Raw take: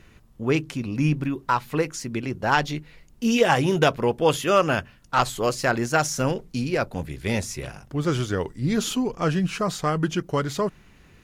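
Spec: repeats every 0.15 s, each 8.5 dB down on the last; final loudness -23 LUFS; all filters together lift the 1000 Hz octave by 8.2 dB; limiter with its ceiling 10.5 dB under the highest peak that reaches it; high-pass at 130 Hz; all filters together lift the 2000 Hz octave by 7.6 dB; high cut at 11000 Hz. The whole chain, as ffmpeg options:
-af "highpass=130,lowpass=11k,equalizer=f=1k:t=o:g=8.5,equalizer=f=2k:t=o:g=7,alimiter=limit=-8dB:level=0:latency=1,aecho=1:1:150|300|450|600:0.376|0.143|0.0543|0.0206,volume=-0.5dB"

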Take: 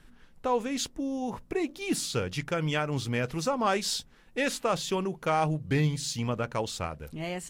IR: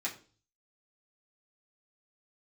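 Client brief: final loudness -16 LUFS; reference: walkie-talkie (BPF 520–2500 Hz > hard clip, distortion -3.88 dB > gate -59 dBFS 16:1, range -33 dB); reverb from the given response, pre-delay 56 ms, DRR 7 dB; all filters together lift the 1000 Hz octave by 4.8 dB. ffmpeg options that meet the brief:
-filter_complex "[0:a]equalizer=f=1k:t=o:g=7,asplit=2[a][b];[1:a]atrim=start_sample=2205,adelay=56[c];[b][c]afir=irnorm=-1:irlink=0,volume=-10.5dB[d];[a][d]amix=inputs=2:normalize=0,highpass=520,lowpass=2.5k,asoftclip=type=hard:threshold=-29.5dB,agate=range=-33dB:threshold=-59dB:ratio=16,volume=19.5dB"

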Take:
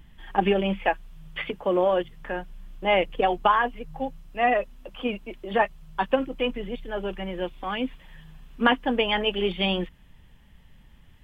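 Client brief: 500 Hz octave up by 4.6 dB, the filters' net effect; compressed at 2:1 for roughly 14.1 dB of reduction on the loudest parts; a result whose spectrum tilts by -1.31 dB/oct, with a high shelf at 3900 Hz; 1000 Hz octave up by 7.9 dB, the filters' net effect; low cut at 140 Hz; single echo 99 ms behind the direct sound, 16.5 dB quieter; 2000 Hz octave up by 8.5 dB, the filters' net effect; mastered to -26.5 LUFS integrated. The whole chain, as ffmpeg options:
-af "highpass=140,equalizer=f=500:t=o:g=3,equalizer=f=1k:t=o:g=7.5,equalizer=f=2k:t=o:g=7,highshelf=f=3.9k:g=4,acompressor=threshold=-35dB:ratio=2,aecho=1:1:99:0.15,volume=5dB"

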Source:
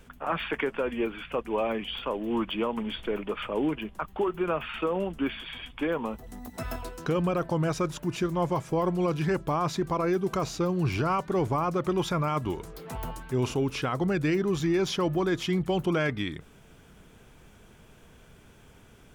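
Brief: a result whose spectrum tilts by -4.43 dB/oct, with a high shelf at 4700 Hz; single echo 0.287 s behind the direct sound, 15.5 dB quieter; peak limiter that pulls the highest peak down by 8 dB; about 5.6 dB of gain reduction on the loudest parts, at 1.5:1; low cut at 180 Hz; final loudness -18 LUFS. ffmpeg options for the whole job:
-af "highpass=180,highshelf=f=4.7k:g=-8,acompressor=threshold=-39dB:ratio=1.5,alimiter=level_in=4.5dB:limit=-24dB:level=0:latency=1,volume=-4.5dB,aecho=1:1:287:0.168,volume=20.5dB"

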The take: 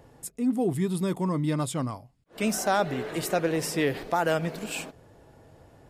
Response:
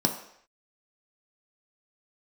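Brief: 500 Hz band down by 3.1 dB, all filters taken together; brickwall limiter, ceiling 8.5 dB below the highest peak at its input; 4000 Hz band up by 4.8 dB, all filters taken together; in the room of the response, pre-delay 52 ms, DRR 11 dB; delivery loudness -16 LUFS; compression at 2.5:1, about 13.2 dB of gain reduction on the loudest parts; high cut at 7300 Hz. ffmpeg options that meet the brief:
-filter_complex "[0:a]lowpass=7.3k,equalizer=f=500:t=o:g=-4,equalizer=f=4k:t=o:g=7,acompressor=threshold=-42dB:ratio=2.5,alimiter=level_in=7.5dB:limit=-24dB:level=0:latency=1,volume=-7.5dB,asplit=2[a][b];[1:a]atrim=start_sample=2205,adelay=52[c];[b][c]afir=irnorm=-1:irlink=0,volume=-21dB[d];[a][d]amix=inputs=2:normalize=0,volume=24.5dB"

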